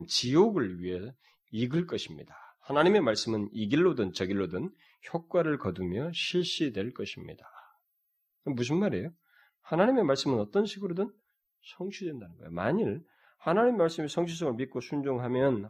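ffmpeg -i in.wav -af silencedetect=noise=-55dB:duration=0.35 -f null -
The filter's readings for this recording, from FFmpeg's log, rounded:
silence_start: 7.71
silence_end: 8.46 | silence_duration: 0.75
silence_start: 11.12
silence_end: 11.64 | silence_duration: 0.52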